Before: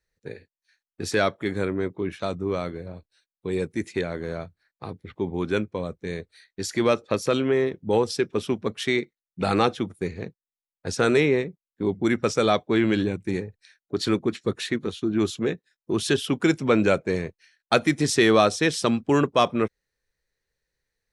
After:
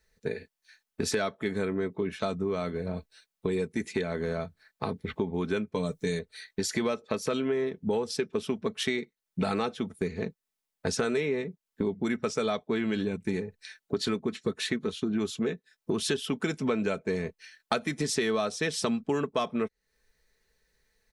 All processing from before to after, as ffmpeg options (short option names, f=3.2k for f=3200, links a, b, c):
-filter_complex "[0:a]asettb=1/sr,asplit=3[a][b][c];[a]atrim=end=5.744[d];[b]atrim=start=5.74:end=6.19,asetpts=PTS-STARTPTS,afade=t=in:d=0.004:c=qsin,afade=t=out:st=0.446:d=0.004:c=qsin,bass=f=250:g=3,treble=f=4k:g=13,aecho=1:1:6.8:0.48,atrim=end_sample=19845[e];[c]atrim=start=6.186[f];[d][e]acrossfade=d=0.004:c1=hsin:c2=qsin[g];[g][f]acrossfade=d=0.004:c1=qsin:c2=hsin,aecho=1:1:4.6:0.48,acompressor=threshold=-36dB:ratio=5,volume=8dB"